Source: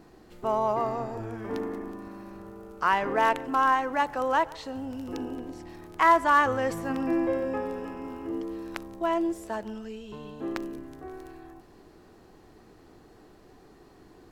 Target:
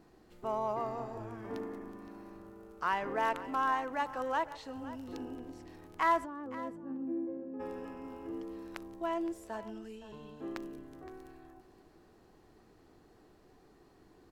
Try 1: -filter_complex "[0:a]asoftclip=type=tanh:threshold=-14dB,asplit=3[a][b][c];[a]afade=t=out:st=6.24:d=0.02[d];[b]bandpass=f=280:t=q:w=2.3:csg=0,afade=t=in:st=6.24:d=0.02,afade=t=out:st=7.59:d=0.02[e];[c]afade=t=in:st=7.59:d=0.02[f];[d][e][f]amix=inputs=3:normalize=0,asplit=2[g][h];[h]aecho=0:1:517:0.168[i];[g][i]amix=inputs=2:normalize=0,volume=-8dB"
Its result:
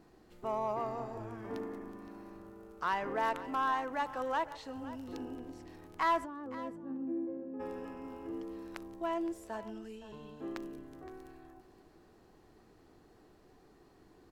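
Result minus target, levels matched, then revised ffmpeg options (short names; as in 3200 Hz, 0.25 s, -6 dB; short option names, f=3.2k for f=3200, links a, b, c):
soft clip: distortion +12 dB
-filter_complex "[0:a]asoftclip=type=tanh:threshold=-6.5dB,asplit=3[a][b][c];[a]afade=t=out:st=6.24:d=0.02[d];[b]bandpass=f=280:t=q:w=2.3:csg=0,afade=t=in:st=6.24:d=0.02,afade=t=out:st=7.59:d=0.02[e];[c]afade=t=in:st=7.59:d=0.02[f];[d][e][f]amix=inputs=3:normalize=0,asplit=2[g][h];[h]aecho=0:1:517:0.168[i];[g][i]amix=inputs=2:normalize=0,volume=-8dB"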